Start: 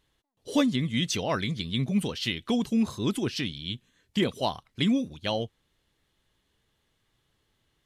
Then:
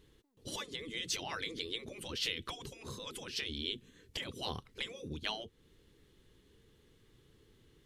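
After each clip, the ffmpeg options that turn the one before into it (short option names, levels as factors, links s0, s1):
-af "lowshelf=f=540:t=q:w=3:g=6,acompressor=threshold=0.0251:ratio=2.5,afftfilt=real='re*lt(hypot(re,im),0.0631)':imag='im*lt(hypot(re,im),0.0631)':win_size=1024:overlap=0.75,volume=1.41"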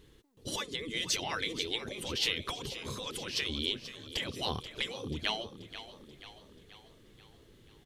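-filter_complex "[0:a]asplit=7[s0][s1][s2][s3][s4][s5][s6];[s1]adelay=484,afreqshift=33,volume=0.224[s7];[s2]adelay=968,afreqshift=66,volume=0.12[s8];[s3]adelay=1452,afreqshift=99,volume=0.0653[s9];[s4]adelay=1936,afreqshift=132,volume=0.0351[s10];[s5]adelay=2420,afreqshift=165,volume=0.0191[s11];[s6]adelay=2904,afreqshift=198,volume=0.0102[s12];[s0][s7][s8][s9][s10][s11][s12]amix=inputs=7:normalize=0,volume=1.78"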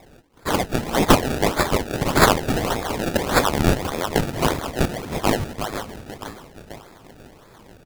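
-filter_complex "[0:a]asplit=2[s0][s1];[s1]adelay=341,lowpass=f=2300:p=1,volume=0.531,asplit=2[s2][s3];[s3]adelay=341,lowpass=f=2300:p=1,volume=0.44,asplit=2[s4][s5];[s5]adelay=341,lowpass=f=2300:p=1,volume=0.44,asplit=2[s6][s7];[s7]adelay=341,lowpass=f=2300:p=1,volume=0.44,asplit=2[s8][s9];[s9]adelay=341,lowpass=f=2300:p=1,volume=0.44[s10];[s0][s2][s4][s6][s8][s10]amix=inputs=6:normalize=0,aexciter=amount=2.8:drive=9:freq=2200,acrusher=samples=29:mix=1:aa=0.000001:lfo=1:lforange=29:lforate=1.7,volume=1.68"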